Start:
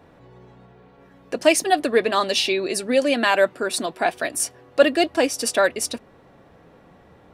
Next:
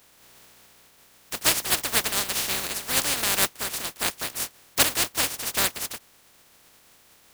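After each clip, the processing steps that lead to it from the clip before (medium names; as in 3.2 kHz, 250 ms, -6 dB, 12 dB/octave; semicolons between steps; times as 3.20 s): spectral contrast reduction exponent 0.12; trim -5 dB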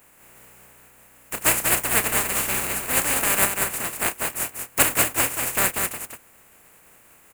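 high-order bell 4.4 kHz -12 dB 1.1 oct; on a send: loudspeakers at several distances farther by 11 m -11 dB, 66 m -5 dB; on the sum: trim +3 dB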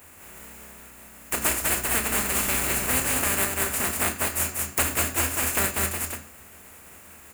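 compression 5:1, threshold -27 dBFS, peak gain reduction 13.5 dB; on a send at -6.5 dB: reverberation RT60 0.45 s, pre-delay 3 ms; on the sum: trim +4.5 dB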